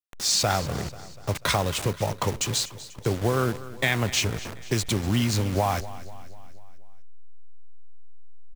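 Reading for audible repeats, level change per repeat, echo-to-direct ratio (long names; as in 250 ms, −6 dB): 4, −5.5 dB, −15.0 dB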